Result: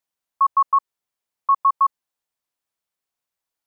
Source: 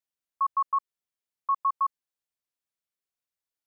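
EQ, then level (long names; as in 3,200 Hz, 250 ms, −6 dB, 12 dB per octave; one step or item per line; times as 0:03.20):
parametric band 890 Hz +5 dB 1.1 octaves
+5.0 dB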